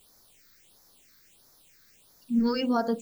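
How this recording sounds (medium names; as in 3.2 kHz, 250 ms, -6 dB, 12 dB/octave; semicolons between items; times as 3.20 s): a quantiser's noise floor 10-bit, dither triangular; phasing stages 6, 1.5 Hz, lowest notch 750–2800 Hz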